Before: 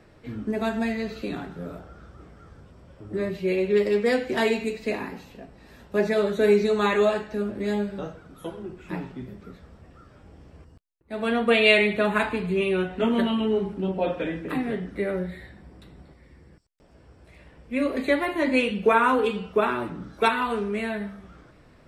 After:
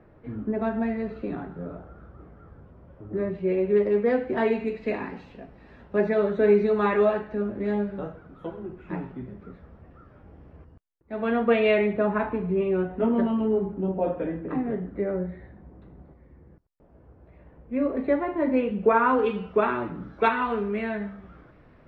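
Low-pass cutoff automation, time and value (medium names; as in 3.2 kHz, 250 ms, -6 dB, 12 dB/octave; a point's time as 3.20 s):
4.30 s 1.4 kHz
5.28 s 3.1 kHz
6.11 s 1.8 kHz
11.38 s 1.8 kHz
11.98 s 1.1 kHz
18.74 s 1.1 kHz
19.30 s 2.3 kHz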